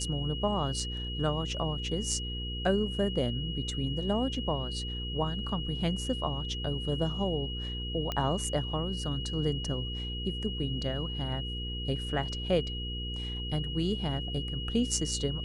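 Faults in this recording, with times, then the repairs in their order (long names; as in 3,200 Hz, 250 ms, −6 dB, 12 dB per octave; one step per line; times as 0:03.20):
mains hum 60 Hz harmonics 8 −37 dBFS
whistle 2,900 Hz −38 dBFS
0:08.12: click −18 dBFS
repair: click removal
notch filter 2,900 Hz, Q 30
hum removal 60 Hz, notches 8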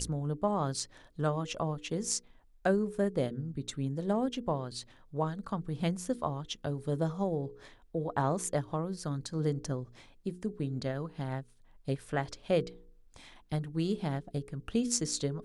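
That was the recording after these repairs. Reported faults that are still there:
none of them is left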